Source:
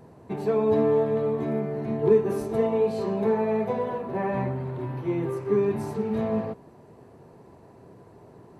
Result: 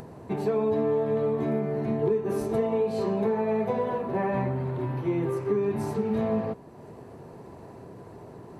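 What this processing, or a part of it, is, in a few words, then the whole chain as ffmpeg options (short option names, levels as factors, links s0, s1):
upward and downward compression: -af "acompressor=mode=upward:threshold=0.01:ratio=2.5,acompressor=threshold=0.0631:ratio=6,volume=1.26"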